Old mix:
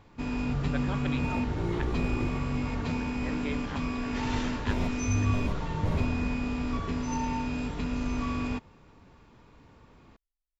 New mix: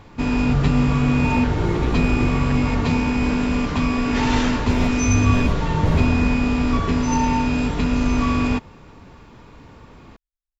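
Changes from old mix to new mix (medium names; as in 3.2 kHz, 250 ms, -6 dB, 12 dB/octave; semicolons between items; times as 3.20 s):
speech: entry +0.70 s; first sound +11.5 dB; second sound +8.0 dB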